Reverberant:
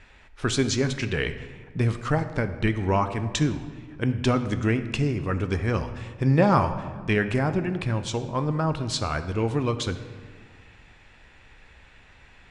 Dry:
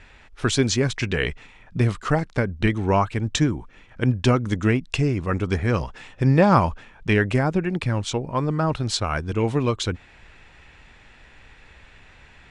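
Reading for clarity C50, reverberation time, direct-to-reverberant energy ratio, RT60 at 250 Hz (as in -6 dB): 11.5 dB, 1.6 s, 9.0 dB, 1.9 s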